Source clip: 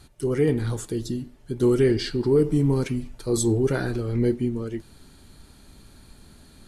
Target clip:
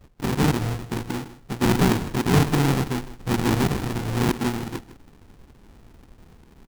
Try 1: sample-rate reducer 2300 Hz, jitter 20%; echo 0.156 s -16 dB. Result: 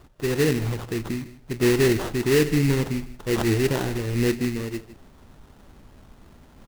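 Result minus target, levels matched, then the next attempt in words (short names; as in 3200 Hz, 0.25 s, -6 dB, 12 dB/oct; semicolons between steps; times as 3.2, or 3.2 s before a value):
sample-rate reducer: distortion -21 dB
sample-rate reducer 600 Hz, jitter 20%; echo 0.156 s -16 dB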